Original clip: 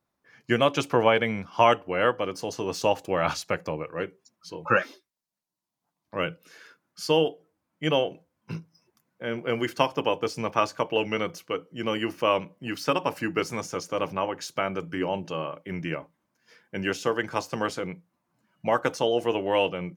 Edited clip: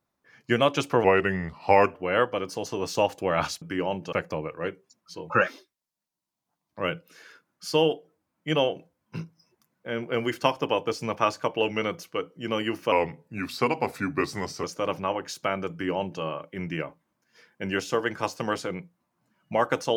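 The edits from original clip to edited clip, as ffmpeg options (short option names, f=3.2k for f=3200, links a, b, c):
-filter_complex "[0:a]asplit=7[a][b][c][d][e][f][g];[a]atrim=end=1.044[h];[b]atrim=start=1.04:end=1.81,asetpts=PTS-STARTPTS,asetrate=37485,aresample=44100,atrim=end_sample=39949,asetpts=PTS-STARTPTS[i];[c]atrim=start=1.806:end=3.482[j];[d]atrim=start=14.838:end=15.352[k];[e]atrim=start=3.478:end=12.274[l];[f]atrim=start=12.27:end=13.77,asetpts=PTS-STARTPTS,asetrate=38367,aresample=44100,atrim=end_sample=76034,asetpts=PTS-STARTPTS[m];[g]atrim=start=13.766[n];[h][i]acrossfade=d=0.004:c1=hsin:c2=hsin[o];[o][j]acrossfade=d=0.004:c1=hsin:c2=hsin[p];[p][k]acrossfade=d=0.004:c1=hsin:c2=hsin[q];[q][l]acrossfade=d=0.004:c1=hsin:c2=hsin[r];[r][m]acrossfade=d=0.004:c1=hsin:c2=hsin[s];[s][n]acrossfade=d=0.004:c1=hsin:c2=hsin"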